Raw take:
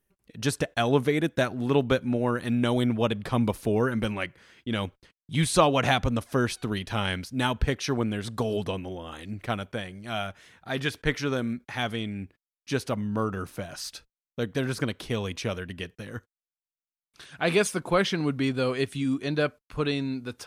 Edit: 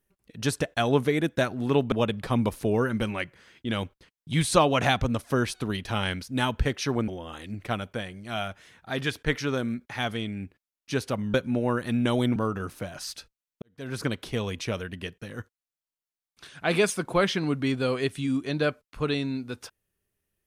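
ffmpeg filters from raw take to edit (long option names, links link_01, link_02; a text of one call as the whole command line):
ffmpeg -i in.wav -filter_complex "[0:a]asplit=6[link_01][link_02][link_03][link_04][link_05][link_06];[link_01]atrim=end=1.922[link_07];[link_02]atrim=start=2.938:end=8.102[link_08];[link_03]atrim=start=8.868:end=13.132[link_09];[link_04]atrim=start=1.918:end=2.942[link_10];[link_05]atrim=start=13.128:end=14.39,asetpts=PTS-STARTPTS,afade=type=out:start_time=1.258:duration=0.004:curve=hsin[link_11];[link_06]atrim=start=14.39,asetpts=PTS-STARTPTS,afade=type=in:duration=0.38:curve=qua[link_12];[link_07][link_08]acrossfade=duration=0.004:curve1=hsin:curve2=hsin[link_13];[link_13][link_09]acrossfade=duration=0.004:curve1=hsin:curve2=hsin[link_14];[link_14][link_10]acrossfade=duration=0.004:curve1=hsin:curve2=hsin[link_15];[link_11][link_12]concat=n=2:v=0:a=1[link_16];[link_15][link_16]acrossfade=duration=0.004:curve1=hsin:curve2=hsin" out.wav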